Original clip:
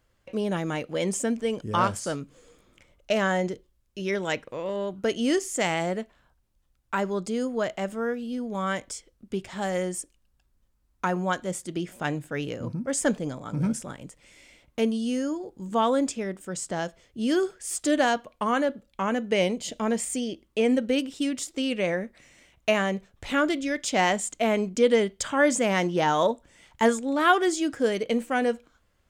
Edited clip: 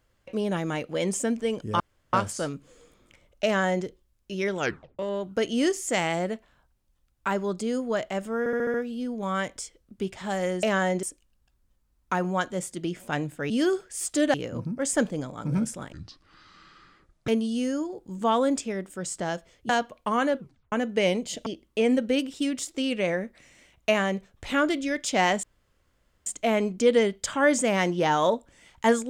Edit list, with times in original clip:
0:01.80: splice in room tone 0.33 s
0:03.12–0:03.52: duplicate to 0:09.95
0:04.26: tape stop 0.40 s
0:08.06: stutter 0.07 s, 6 plays
0:14.00–0:14.79: play speed 58%
0:17.20–0:18.04: move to 0:12.42
0:18.71: tape stop 0.36 s
0:19.81–0:20.26: remove
0:24.23: splice in room tone 0.83 s

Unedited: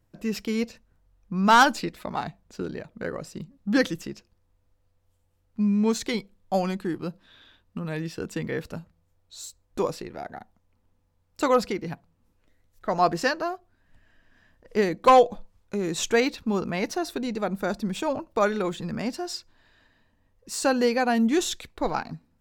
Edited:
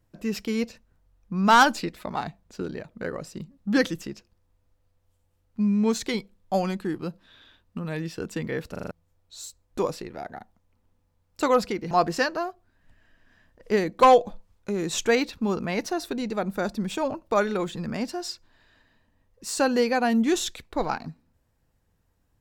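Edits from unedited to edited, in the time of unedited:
0:08.71: stutter in place 0.04 s, 5 plays
0:11.91–0:12.96: remove

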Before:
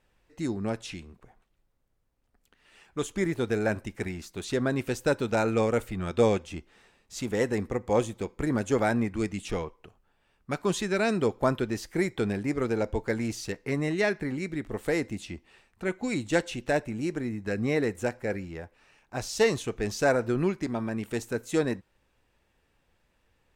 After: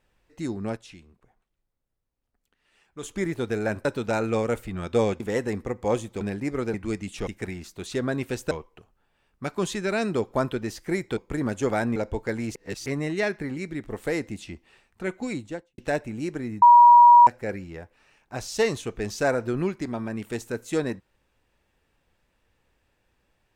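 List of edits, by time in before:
0:00.77–0:03.03: clip gain −7.5 dB
0:03.85–0:05.09: move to 0:09.58
0:06.44–0:07.25: remove
0:08.26–0:09.05: swap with 0:12.24–0:12.77
0:13.36–0:13.67: reverse
0:16.01–0:16.59: fade out and dull
0:17.43–0:18.08: beep over 959 Hz −8.5 dBFS

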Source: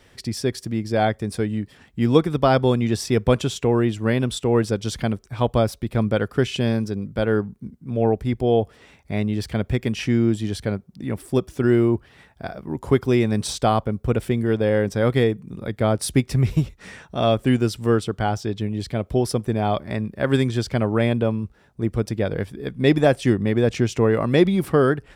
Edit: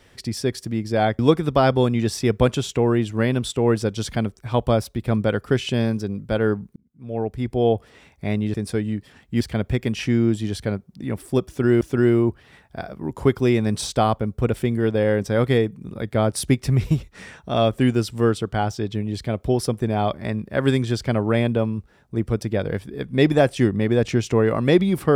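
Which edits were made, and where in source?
0:01.19–0:02.06: move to 0:09.41
0:07.63–0:08.53: fade in
0:11.47–0:11.81: repeat, 2 plays

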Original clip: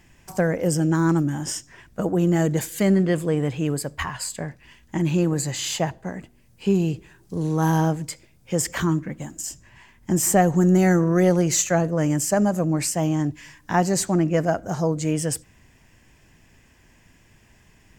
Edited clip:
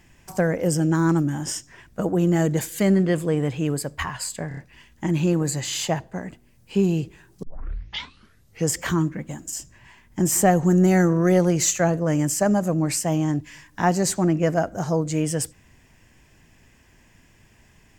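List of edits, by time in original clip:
0:04.48: stutter 0.03 s, 4 plays
0:07.34: tape start 1.29 s

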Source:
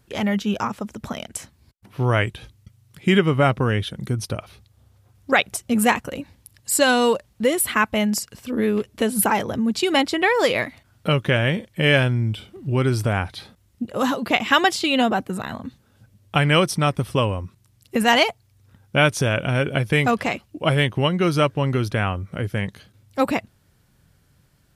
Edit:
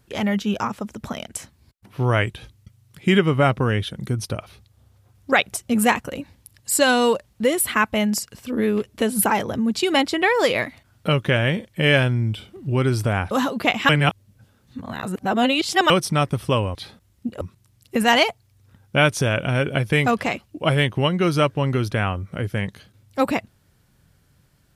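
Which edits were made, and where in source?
0:13.31–0:13.97: move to 0:17.41
0:14.55–0:16.56: reverse

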